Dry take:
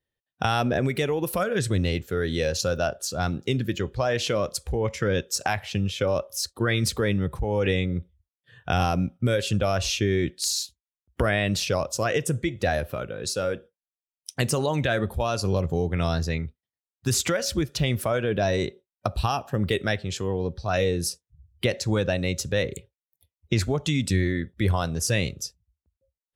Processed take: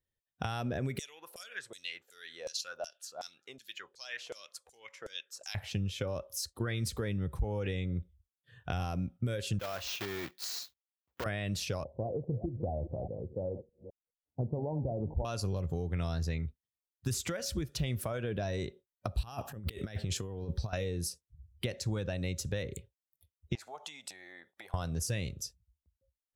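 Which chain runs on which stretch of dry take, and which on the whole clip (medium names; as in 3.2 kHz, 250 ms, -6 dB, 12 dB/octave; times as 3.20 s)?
0.99–5.55 s: RIAA curve recording + LFO band-pass saw down 2.7 Hz 580–7600 Hz
9.59–11.26 s: block-companded coder 3-bit + high-pass 810 Hz 6 dB/octave + peaking EQ 9.4 kHz -13.5 dB 1.3 oct
11.84–15.25 s: chunks repeated in reverse 206 ms, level -12.5 dB + steep low-pass 900 Hz 72 dB/octave
19.23–20.73 s: treble shelf 9.9 kHz +8 dB + compressor with a negative ratio -31 dBFS, ratio -0.5
23.55–24.74 s: compression, threshold -31 dBFS + resonant high-pass 790 Hz, resonance Q 3.6
whole clip: treble shelf 7.9 kHz +4.5 dB; compression, threshold -25 dBFS; bass shelf 130 Hz +9 dB; trim -8 dB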